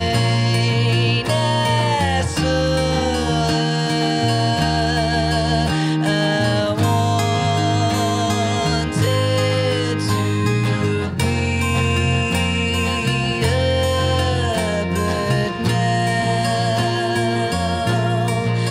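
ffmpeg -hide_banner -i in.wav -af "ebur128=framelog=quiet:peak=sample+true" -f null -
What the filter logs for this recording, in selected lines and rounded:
Integrated loudness:
  I:         -18.5 LUFS
  Threshold: -28.5 LUFS
Loudness range:
  LRA:         1.0 LU
  Threshold: -38.5 LUFS
  LRA low:   -19.0 LUFS
  LRA high:  -18.0 LUFS
Sample peak:
  Peak:       -5.3 dBFS
True peak:
  Peak:       -5.3 dBFS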